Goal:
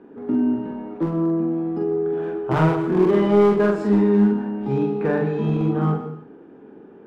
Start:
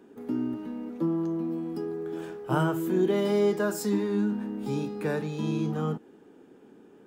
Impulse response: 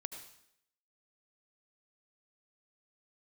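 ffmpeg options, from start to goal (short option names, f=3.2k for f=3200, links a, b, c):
-filter_complex "[0:a]lowpass=1.8k,volume=21.5dB,asoftclip=hard,volume=-21.5dB,asplit=2[a][b];[1:a]atrim=start_sample=2205,afade=t=out:st=0.38:d=0.01,atrim=end_sample=17199,adelay=44[c];[b][c]afir=irnorm=-1:irlink=0,volume=1dB[d];[a][d]amix=inputs=2:normalize=0,volume=6.5dB"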